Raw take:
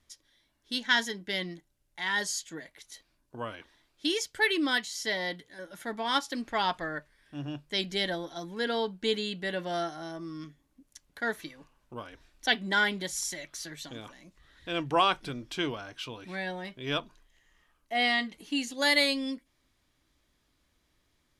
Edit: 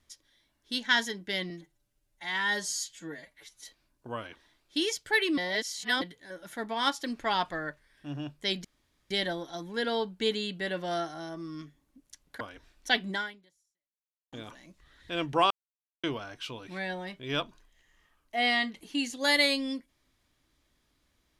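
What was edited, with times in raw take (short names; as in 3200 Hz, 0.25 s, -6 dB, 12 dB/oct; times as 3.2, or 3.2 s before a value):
1.5–2.93 stretch 1.5×
4.66–5.3 reverse
7.93 insert room tone 0.46 s
11.23–11.98 cut
12.68–13.9 fade out exponential
15.08–15.61 mute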